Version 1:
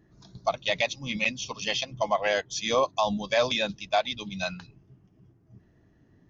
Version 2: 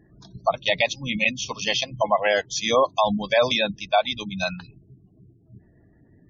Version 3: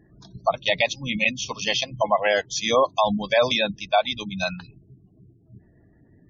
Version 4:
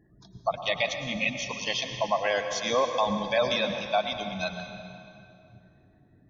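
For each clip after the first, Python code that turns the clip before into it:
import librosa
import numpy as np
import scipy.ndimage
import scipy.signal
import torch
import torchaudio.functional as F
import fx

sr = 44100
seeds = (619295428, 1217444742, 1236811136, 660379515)

y1 = fx.spec_gate(x, sr, threshold_db=-25, keep='strong')
y1 = F.gain(torch.from_numpy(y1), 5.0).numpy()
y2 = y1
y3 = fx.rev_plate(y2, sr, seeds[0], rt60_s=2.7, hf_ratio=0.75, predelay_ms=90, drr_db=6.0)
y3 = F.gain(torch.from_numpy(y3), -6.0).numpy()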